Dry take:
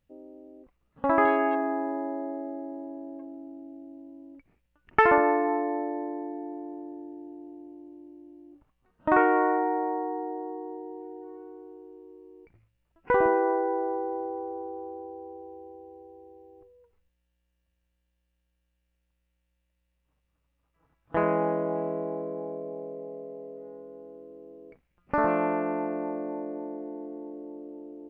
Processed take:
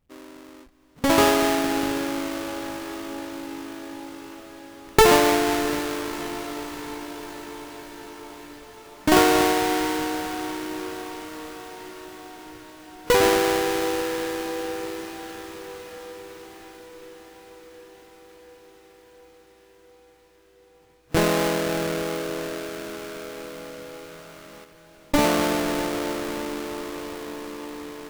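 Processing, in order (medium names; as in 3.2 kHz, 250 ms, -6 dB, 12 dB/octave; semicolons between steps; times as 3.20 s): square wave that keeps the level; echo that smears into a reverb 659 ms, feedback 74%, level -15.5 dB; 24.64–25.14 s: level held to a coarse grid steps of 17 dB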